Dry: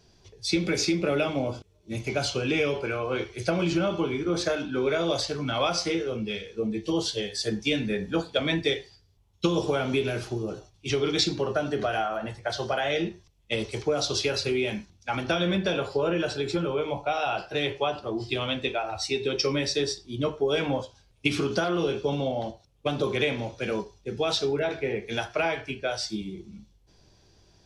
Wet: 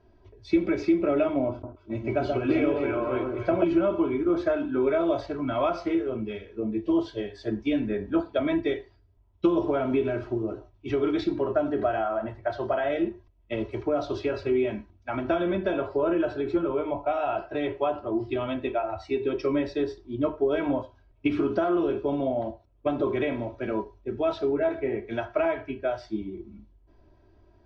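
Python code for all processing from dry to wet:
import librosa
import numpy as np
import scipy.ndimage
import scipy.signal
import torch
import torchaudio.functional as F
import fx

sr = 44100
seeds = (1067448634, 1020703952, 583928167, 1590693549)

y = fx.chain(x, sr, fx.lowpass(hz=8500.0, slope=12),
    fx.echo_alternate(ms=132, hz=1300.0, feedback_pct=57, wet_db=-2.5), at=(1.5, 3.64))
y = scipy.signal.sosfilt(scipy.signal.butter(2, 1400.0, 'lowpass', fs=sr, output='sos'), y)
y = y + 0.71 * np.pad(y, (int(3.1 * sr / 1000.0), 0))[:len(y)]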